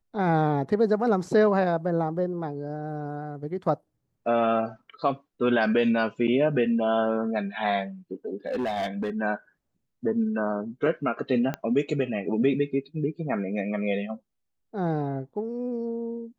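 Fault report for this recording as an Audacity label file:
8.470000	9.100000	clipped -24 dBFS
11.540000	11.540000	pop -16 dBFS

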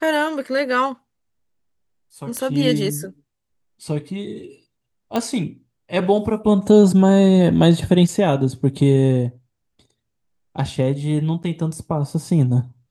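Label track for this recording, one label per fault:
2.370000	2.370000	pop -13 dBFS
5.160000	5.160000	pop -9 dBFS
11.430000	11.440000	gap 8.1 ms

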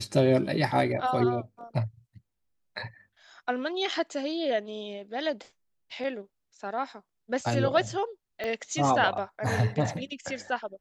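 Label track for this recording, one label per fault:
8.440000	8.440000	pop -19 dBFS

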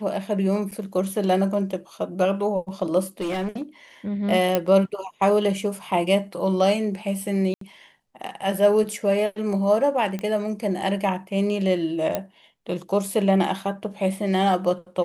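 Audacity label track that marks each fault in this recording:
0.710000	0.720000	gap 7.2 ms
3.200000	3.620000	clipped -23 dBFS
4.550000	4.550000	pop -7 dBFS
7.540000	7.610000	gap 73 ms
10.190000	10.190000	pop -17 dBFS
12.150000	12.150000	pop -10 dBFS

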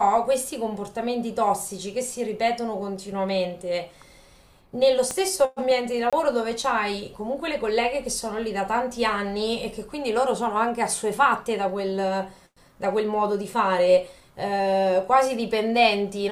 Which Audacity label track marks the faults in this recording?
5.110000	5.110000	pop -14 dBFS
6.100000	6.130000	gap 26 ms

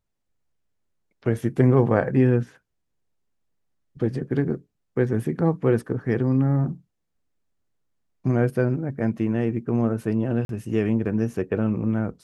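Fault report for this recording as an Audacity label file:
10.450000	10.490000	gap 42 ms

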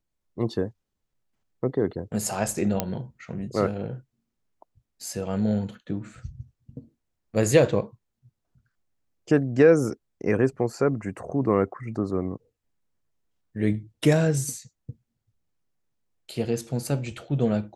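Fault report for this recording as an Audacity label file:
2.800000	2.800000	pop -8 dBFS

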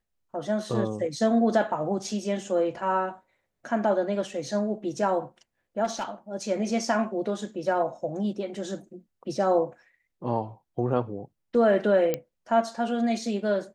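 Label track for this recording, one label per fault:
5.840000	6.050000	clipped -24.5 dBFS
12.140000	12.140000	pop -13 dBFS

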